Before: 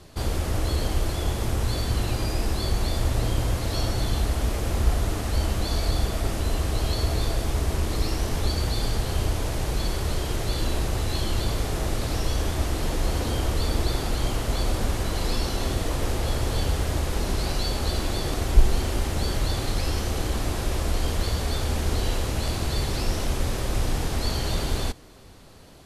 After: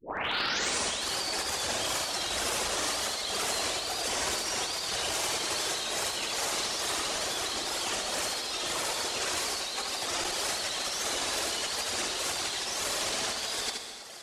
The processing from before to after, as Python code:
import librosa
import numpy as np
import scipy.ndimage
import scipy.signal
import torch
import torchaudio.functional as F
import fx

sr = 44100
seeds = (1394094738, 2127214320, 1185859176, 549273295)

y = fx.tape_start_head(x, sr, length_s=2.01)
y = fx.weighting(y, sr, curve='ITU-R 468')
y = fx.dereverb_blind(y, sr, rt60_s=1.5)
y = fx.peak_eq(y, sr, hz=580.0, db=7.0, octaves=2.9)
y = fx.over_compress(y, sr, threshold_db=-33.0, ratio=-1.0)
y = np.clip(y, -10.0 ** (-22.0 / 20.0), 10.0 ** (-22.0 / 20.0))
y = fx.stretch_grains(y, sr, factor=0.55, grain_ms=103.0)
y = fx.wow_flutter(y, sr, seeds[0], rate_hz=2.1, depth_cents=140.0)
y = y + 10.0 ** (-4.5 / 20.0) * np.pad(y, (int(74 * sr / 1000.0), 0))[:len(y)]
y = fx.rev_gated(y, sr, seeds[1], gate_ms=350, shape='flat', drr_db=7.0)
y = fx.transformer_sat(y, sr, knee_hz=530.0)